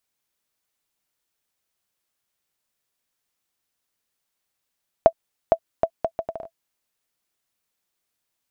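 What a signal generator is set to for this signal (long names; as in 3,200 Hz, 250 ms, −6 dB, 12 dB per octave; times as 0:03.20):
bouncing ball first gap 0.46 s, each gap 0.68, 661 Hz, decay 68 ms −1.5 dBFS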